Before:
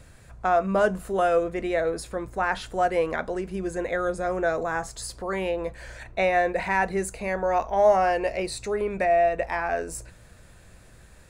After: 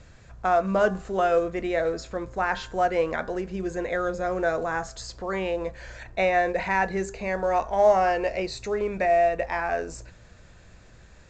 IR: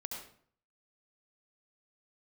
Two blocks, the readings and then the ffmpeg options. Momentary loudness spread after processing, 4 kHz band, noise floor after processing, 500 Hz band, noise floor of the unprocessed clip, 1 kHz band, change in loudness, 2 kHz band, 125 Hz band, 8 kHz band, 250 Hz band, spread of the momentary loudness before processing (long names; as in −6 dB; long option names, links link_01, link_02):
10 LU, 0.0 dB, −51 dBFS, 0.0 dB, −51 dBFS, 0.0 dB, 0.0 dB, 0.0 dB, 0.0 dB, −5.0 dB, 0.0 dB, 10 LU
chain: -af "bandreject=frequency=131.5:width_type=h:width=4,bandreject=frequency=263:width_type=h:width=4,bandreject=frequency=394.5:width_type=h:width=4,bandreject=frequency=526:width_type=h:width=4,bandreject=frequency=657.5:width_type=h:width=4,bandreject=frequency=789:width_type=h:width=4,bandreject=frequency=920.5:width_type=h:width=4,bandreject=frequency=1052:width_type=h:width=4,bandreject=frequency=1183.5:width_type=h:width=4,bandreject=frequency=1315:width_type=h:width=4,bandreject=frequency=1446.5:width_type=h:width=4,bandreject=frequency=1578:width_type=h:width=4,bandreject=frequency=1709.5:width_type=h:width=4,bandreject=frequency=1841:width_type=h:width=4" -ar 16000 -c:a pcm_mulaw